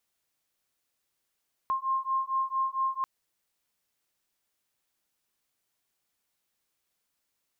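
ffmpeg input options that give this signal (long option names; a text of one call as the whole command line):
ffmpeg -f lavfi -i "aevalsrc='0.0335*(sin(2*PI*1060*t)+sin(2*PI*1064.4*t))':duration=1.34:sample_rate=44100" out.wav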